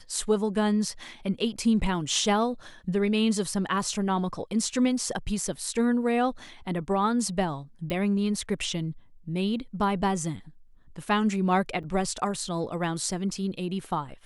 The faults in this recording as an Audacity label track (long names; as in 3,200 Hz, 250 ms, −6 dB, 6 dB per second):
7.900000	7.900000	click −18 dBFS
11.830000	11.840000	drop-out 6.2 ms